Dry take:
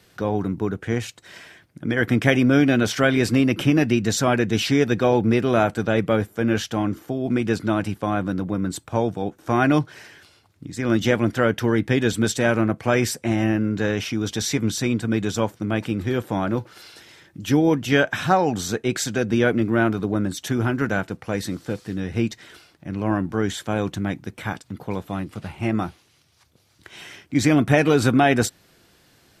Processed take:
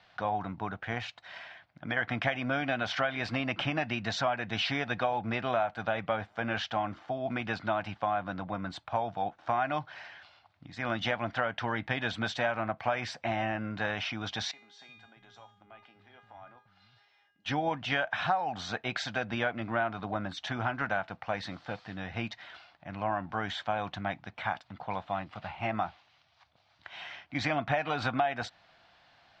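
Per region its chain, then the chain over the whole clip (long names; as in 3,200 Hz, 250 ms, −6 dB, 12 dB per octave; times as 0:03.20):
0:14.51–0:17.46: downward compressor, threshold −23 dBFS + tuned comb filter 410 Hz, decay 0.59 s, mix 90% + multiband delay without the direct sound highs, lows 350 ms, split 180 Hz
whole clip: low-pass filter 4,200 Hz 24 dB per octave; low shelf with overshoot 540 Hz −9 dB, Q 3; downward compressor 6 to 1, threshold −23 dBFS; level −3 dB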